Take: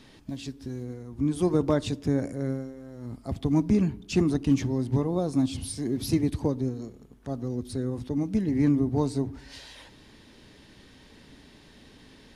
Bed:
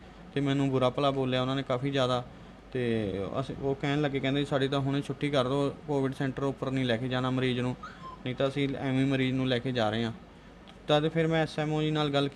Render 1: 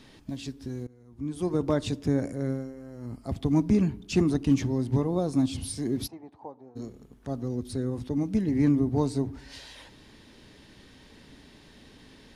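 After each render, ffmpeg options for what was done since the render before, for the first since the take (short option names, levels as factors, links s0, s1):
-filter_complex "[0:a]asettb=1/sr,asplit=3[s0][s1][s2];[s0]atrim=end=2.634[s3];[s1]atrim=start=2.63:end=3.22,asetpts=PTS-STARTPTS,afade=t=in:d=0.004:c=qsin,afade=t=out:st=0.586:d=0.004:c=qsin,asuperstop=centerf=3600:order=4:qfactor=4.6[s4];[s2]atrim=start=3.216[s5];[s3][s4]acrossfade=d=0.004:c1=hsin:c2=qsin[s6];[s6][s5]acrossfade=d=0.004:c1=qsin:c2=hsin,asplit=3[s7][s8][s9];[s7]afade=t=out:st=6.06:d=0.02[s10];[s8]bandpass=f=810:t=q:w=4.6,afade=t=in:st=6.06:d=0.02,afade=t=out:st=6.75:d=0.02[s11];[s9]afade=t=in:st=6.75:d=0.02[s12];[s10][s11][s12]amix=inputs=3:normalize=0,asplit=2[s13][s14];[s13]atrim=end=0.87,asetpts=PTS-STARTPTS,afade=t=out:st=0.866:d=0.004:c=hsin:silence=0.0891251[s15];[s14]atrim=start=0.87,asetpts=PTS-STARTPTS,afade=t=in:d=1.05:silence=0.0891251[s16];[s15][s16]concat=n=2:v=0:a=1"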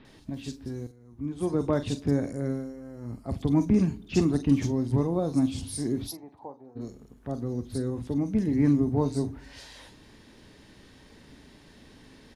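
-filter_complex "[0:a]asplit=2[s0][s1];[s1]adelay=42,volume=0.224[s2];[s0][s2]amix=inputs=2:normalize=0,acrossover=split=3300[s3][s4];[s4]adelay=50[s5];[s3][s5]amix=inputs=2:normalize=0"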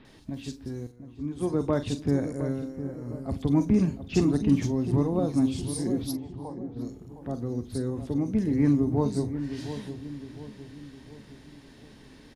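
-filter_complex "[0:a]asplit=2[s0][s1];[s1]adelay=711,lowpass=f=970:p=1,volume=0.316,asplit=2[s2][s3];[s3]adelay=711,lowpass=f=970:p=1,volume=0.49,asplit=2[s4][s5];[s5]adelay=711,lowpass=f=970:p=1,volume=0.49,asplit=2[s6][s7];[s7]adelay=711,lowpass=f=970:p=1,volume=0.49,asplit=2[s8][s9];[s9]adelay=711,lowpass=f=970:p=1,volume=0.49[s10];[s0][s2][s4][s6][s8][s10]amix=inputs=6:normalize=0"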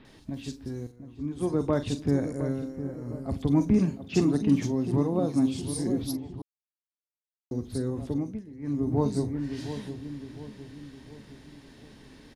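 -filter_complex "[0:a]asettb=1/sr,asplit=3[s0][s1][s2];[s0]atrim=end=3.784[s3];[s1]atrim=start=3.78:end=5.67,asetpts=PTS-STARTPTS,afade=t=in:d=0.004:c=qsin,afade=t=out:st=1.886:d=0.004:c=qsin,highpass=120[s4];[s2]atrim=start=5.666[s5];[s3][s4]acrossfade=d=0.004:c1=hsin:c2=qsin[s6];[s6][s5]acrossfade=d=0.004:c1=qsin:c2=hsin,asplit=5[s7][s8][s9][s10][s11];[s7]atrim=end=6.42,asetpts=PTS-STARTPTS,afade=t=out:st=6.416:d=0.004:c=hsin[s12];[s8]atrim=start=6.42:end=7.51,asetpts=PTS-STARTPTS,volume=0[s13];[s9]atrim=start=7.51:end=8.43,asetpts=PTS-STARTPTS,afade=t=in:d=0.004:c=hsin,afade=t=out:st=0.59:d=0.33:silence=0.112202[s14];[s10]atrim=start=8.43:end=8.61,asetpts=PTS-STARTPTS,volume=0.112[s15];[s11]atrim=start=8.61,asetpts=PTS-STARTPTS,afade=t=in:d=0.33:silence=0.112202[s16];[s12][s13][s14][s15][s16]concat=n=5:v=0:a=1"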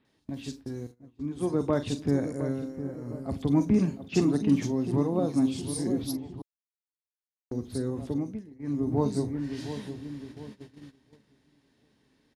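-af "highpass=f=95:p=1,agate=range=0.158:threshold=0.00708:ratio=16:detection=peak"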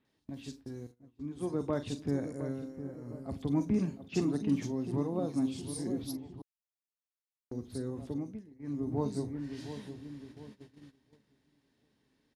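-af "volume=0.473"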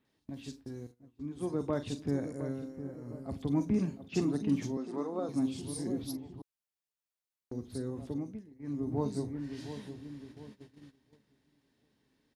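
-filter_complex "[0:a]asettb=1/sr,asplit=3[s0][s1][s2];[s0]atrim=end=4.774[s3];[s1]atrim=start=4.77:end=5.29,asetpts=PTS-STARTPTS,afade=t=in:d=0.004:c=qsin,afade=t=out:st=0.516:d=0.004:c=qsin,highpass=f=240:w=0.5412,highpass=f=240:w=1.3066,equalizer=f=310:t=q:w=4:g=-4,equalizer=f=1300:t=q:w=4:g=8,equalizer=f=2800:t=q:w=4:g=-6,lowpass=f=8800:w=0.5412,lowpass=f=8800:w=1.3066[s4];[s2]atrim=start=5.286[s5];[s3][s4]acrossfade=d=0.004:c1=hsin:c2=qsin[s6];[s6][s5]acrossfade=d=0.004:c1=qsin:c2=hsin"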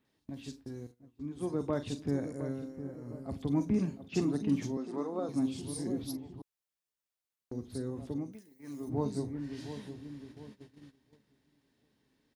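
-filter_complex "[0:a]asplit=3[s0][s1][s2];[s0]afade=t=out:st=8.32:d=0.02[s3];[s1]aemphasis=mode=production:type=riaa,afade=t=in:st=8.32:d=0.02,afade=t=out:st=8.88:d=0.02[s4];[s2]afade=t=in:st=8.88:d=0.02[s5];[s3][s4][s5]amix=inputs=3:normalize=0"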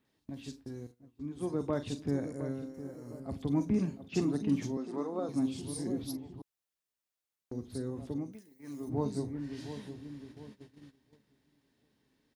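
-filter_complex "[0:a]asettb=1/sr,asplit=3[s0][s1][s2];[s0]atrim=end=2.744[s3];[s1]atrim=start=2.74:end=3.2,asetpts=PTS-STARTPTS,afade=t=in:d=0.004:c=qsin,afade=t=out:st=0.456:d=0.004:c=qsin,bass=f=250:g=-4,treble=f=4000:g=9[s4];[s2]atrim=start=3.196[s5];[s3][s4]acrossfade=d=0.004:c1=hsin:c2=qsin[s6];[s6][s5]acrossfade=d=0.004:c1=qsin:c2=hsin"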